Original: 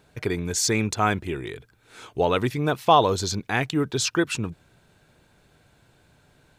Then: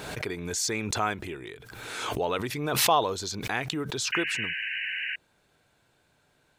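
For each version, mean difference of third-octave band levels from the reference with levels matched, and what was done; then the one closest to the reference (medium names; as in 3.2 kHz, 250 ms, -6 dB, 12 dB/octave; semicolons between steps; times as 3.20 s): 5.0 dB: bass shelf 240 Hz -9 dB; painted sound noise, 4.12–5.16 s, 1.5–3 kHz -27 dBFS; swell ahead of each attack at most 38 dB/s; trim -5.5 dB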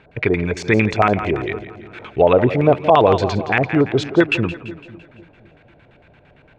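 8.0 dB: LFO low-pass square 8.8 Hz 630–2400 Hz; on a send: two-band feedback delay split 330 Hz, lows 252 ms, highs 169 ms, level -14 dB; on the sum: loudness maximiser +8 dB; trim -1 dB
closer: first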